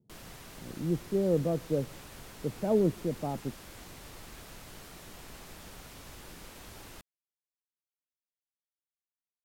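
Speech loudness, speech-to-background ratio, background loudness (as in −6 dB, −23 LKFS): −31.0 LKFS, 17.0 dB, −48.0 LKFS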